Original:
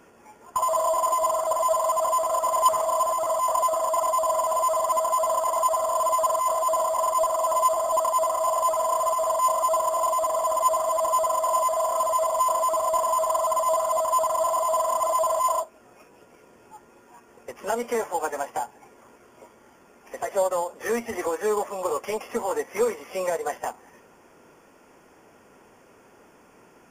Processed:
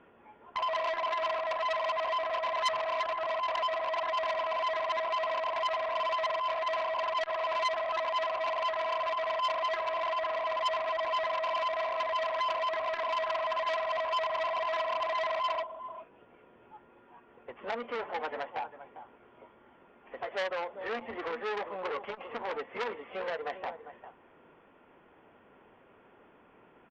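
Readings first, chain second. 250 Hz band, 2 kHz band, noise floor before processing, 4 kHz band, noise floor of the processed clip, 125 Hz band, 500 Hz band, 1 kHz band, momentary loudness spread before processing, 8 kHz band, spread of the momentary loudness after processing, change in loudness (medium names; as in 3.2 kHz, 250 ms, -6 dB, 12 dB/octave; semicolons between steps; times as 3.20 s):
-10.0 dB, +4.5 dB, -55 dBFS, +3.0 dB, -60 dBFS, no reading, -8.5 dB, -9.0 dB, 7 LU, under -25 dB, 8 LU, -8.0 dB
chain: elliptic low-pass 3.4 kHz, stop band 40 dB; delay 400 ms -14 dB; transformer saturation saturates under 2.9 kHz; trim -5 dB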